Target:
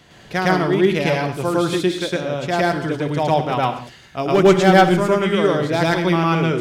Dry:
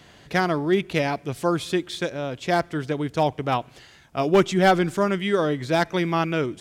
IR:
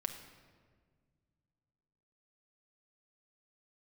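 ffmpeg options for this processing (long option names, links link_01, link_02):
-filter_complex "[0:a]asplit=2[link_01][link_02];[1:a]atrim=start_sample=2205,afade=type=out:start_time=0.23:duration=0.01,atrim=end_sample=10584,adelay=108[link_03];[link_02][link_03]afir=irnorm=-1:irlink=0,volume=3.5dB[link_04];[link_01][link_04]amix=inputs=2:normalize=0"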